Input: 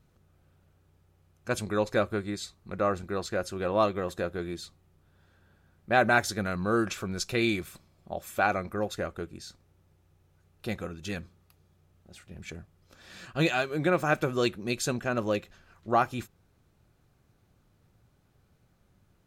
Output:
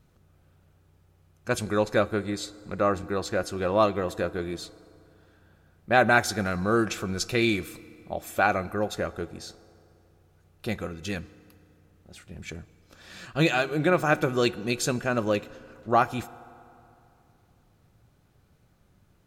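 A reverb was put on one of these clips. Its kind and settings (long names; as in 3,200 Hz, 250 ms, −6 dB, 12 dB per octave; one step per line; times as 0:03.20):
feedback delay network reverb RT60 2.8 s, high-frequency decay 0.6×, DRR 18 dB
level +3 dB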